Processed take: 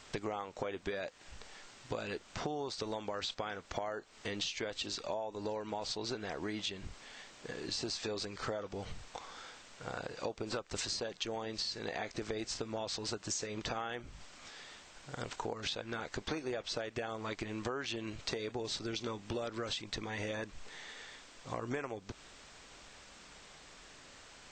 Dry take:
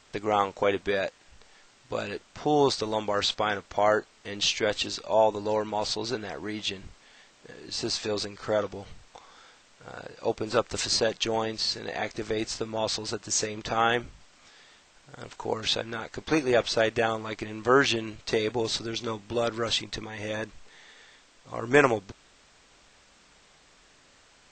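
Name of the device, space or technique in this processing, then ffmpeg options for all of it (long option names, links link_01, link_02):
serial compression, leveller first: -af "acompressor=threshold=-27dB:ratio=2.5,acompressor=threshold=-39dB:ratio=6,volume=3dB"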